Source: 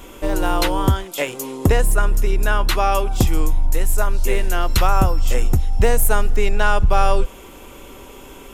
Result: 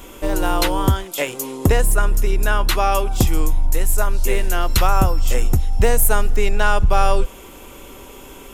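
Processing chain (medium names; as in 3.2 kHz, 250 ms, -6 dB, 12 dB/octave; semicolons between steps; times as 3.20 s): treble shelf 6.3 kHz +4 dB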